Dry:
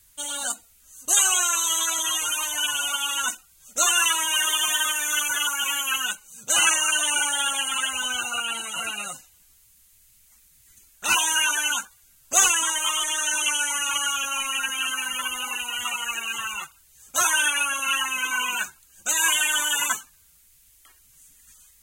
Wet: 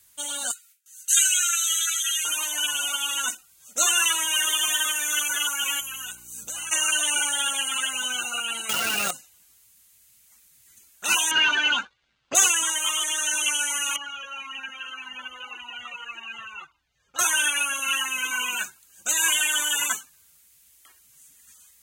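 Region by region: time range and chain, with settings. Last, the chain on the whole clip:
0.51–2.25 s: brick-wall FIR high-pass 1.3 kHz + peaking EQ 2.4 kHz +2.5 dB 0.28 oct + gate with hold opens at -45 dBFS, closes at -48 dBFS
5.79–6.71 s: treble shelf 7.1 kHz +9.5 dB + compression 5:1, threshold -32 dBFS + mains buzz 60 Hz, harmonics 6, -53 dBFS -6 dB/octave
8.69–9.11 s: square wave that keeps the level + level flattener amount 100%
11.31–12.35 s: waveshaping leveller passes 2 + low-pass 3.9 kHz 24 dB/octave
13.96–17.19 s: distance through air 250 m + Shepard-style flanger falling 1.8 Hz
whole clip: high-pass 170 Hz 6 dB/octave; dynamic bell 1 kHz, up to -5 dB, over -42 dBFS, Q 1.3

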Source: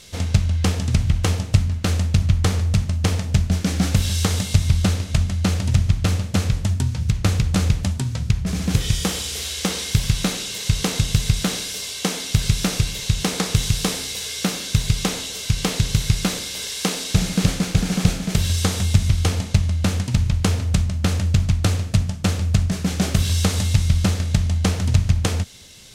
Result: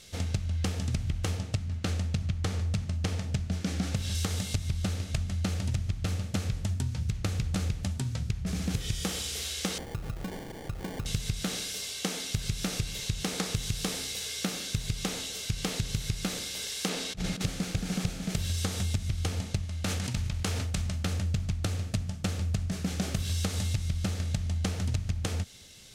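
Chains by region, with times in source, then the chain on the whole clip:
1.37–4.15 s: high-pass 55 Hz + treble shelf 12 kHz -10 dB
9.78–11.06 s: low-pass 2.5 kHz 6 dB/octave + compression 3:1, threshold -25 dBFS + sample-rate reducer 1.3 kHz
16.89–17.41 s: treble shelf 5.4 kHz -9.5 dB + compressor with a negative ratio -23 dBFS, ratio -0.5
19.65–21.06 s: bass shelf 430 Hz -6.5 dB + decay stretcher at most 22 dB/s
whole clip: band-stop 1 kHz, Q 12; compression, threshold -19 dBFS; trim -7 dB

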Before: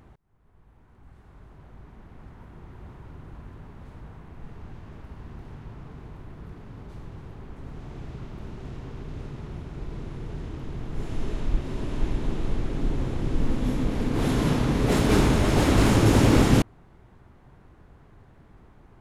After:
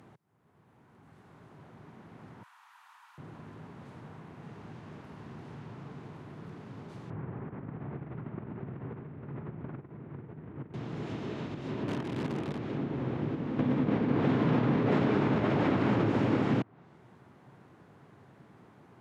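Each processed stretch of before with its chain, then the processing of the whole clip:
2.43–3.18 s: steep high-pass 890 Hz 48 dB/octave + treble shelf 7.1 kHz +6.5 dB + band-stop 2.1 kHz, Q 17
7.10–10.74 s: low-pass 2.1 kHz 24 dB/octave + bass shelf 170 Hz +5.5 dB + compressor with a negative ratio -36 dBFS
11.88–12.59 s: zero-crossing glitches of -18.5 dBFS + waveshaping leveller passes 1
13.59–16.10 s: treble shelf 8.3 kHz -10.5 dB + level flattener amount 100%
whole clip: compression, threshold -22 dBFS; high-pass 120 Hz 24 dB/octave; low-pass that closes with the level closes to 2.4 kHz, closed at -30 dBFS

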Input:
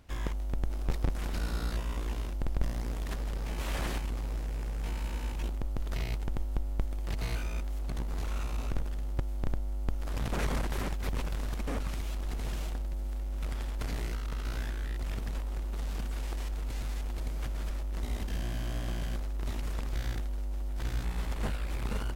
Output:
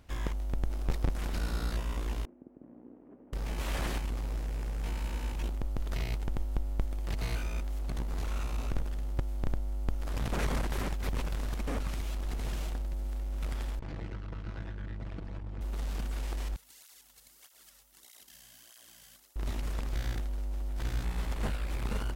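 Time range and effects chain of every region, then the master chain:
2.25–3.33 s: one-bit delta coder 16 kbps, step -43 dBFS + ladder band-pass 320 Hz, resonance 50%
13.79–15.61 s: comb filter that takes the minimum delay 6.1 ms + tape spacing loss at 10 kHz 25 dB + transformer saturation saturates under 110 Hz
16.56–19.36 s: pre-emphasis filter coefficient 0.97 + band-stop 2.4 kHz, Q 16 + cancelling through-zero flanger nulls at 1.6 Hz, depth 3.4 ms
whole clip: none

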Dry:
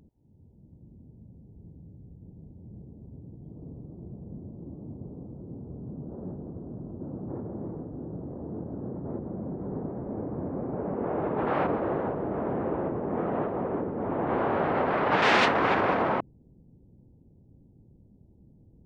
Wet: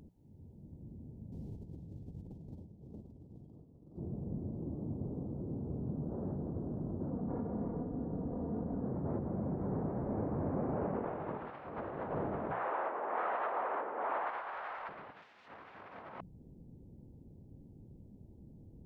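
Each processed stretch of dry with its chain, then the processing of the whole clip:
1.32–3.98 s: peaking EQ 4.2 kHz +12 dB 2.6 oct + compressor with a negative ratio -50 dBFS, ratio -0.5
7.10–8.87 s: distance through air 230 m + comb 4.2 ms, depth 49%
12.51–14.89 s: high-pass 880 Hz + overdrive pedal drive 10 dB, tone 1.8 kHz, clips at -18.5 dBFS
whole clip: hum notches 60/120/180 Hz; dynamic bell 340 Hz, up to -6 dB, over -41 dBFS, Q 0.79; compressor with a negative ratio -36 dBFS, ratio -0.5; trim -1.5 dB

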